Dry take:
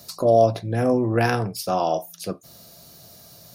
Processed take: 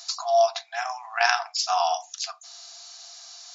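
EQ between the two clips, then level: brick-wall FIR band-pass 660–7500 Hz; bell 1300 Hz +2 dB; high shelf 2800 Hz +11 dB; 0.0 dB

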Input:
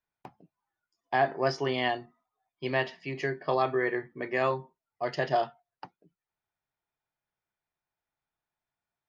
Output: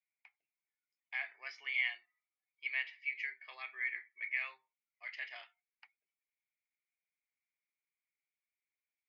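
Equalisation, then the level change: ladder band-pass 2300 Hz, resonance 85%; +1.0 dB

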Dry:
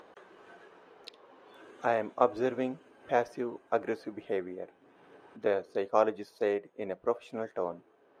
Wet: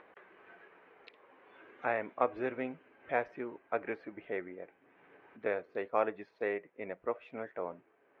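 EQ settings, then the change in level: synth low-pass 2200 Hz, resonance Q 3.1; -6.0 dB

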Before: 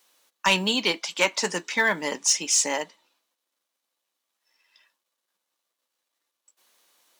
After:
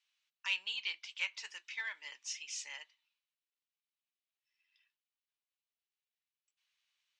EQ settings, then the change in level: ladder band-pass 3100 Hz, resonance 50%; air absorption 74 m; bell 3100 Hz -9 dB 1.7 oct; +3.5 dB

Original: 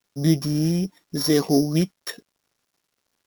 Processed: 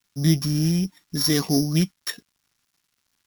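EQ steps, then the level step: bell 500 Hz -11.5 dB 1.6 oct; +3.5 dB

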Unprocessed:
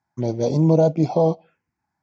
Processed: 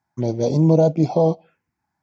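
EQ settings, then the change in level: dynamic EQ 1400 Hz, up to -3 dB, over -33 dBFS, Q 0.82; +1.5 dB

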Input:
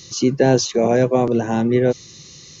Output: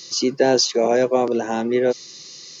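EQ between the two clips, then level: HPF 310 Hz 12 dB/oct; bell 4800 Hz +9 dB 0.26 oct; 0.0 dB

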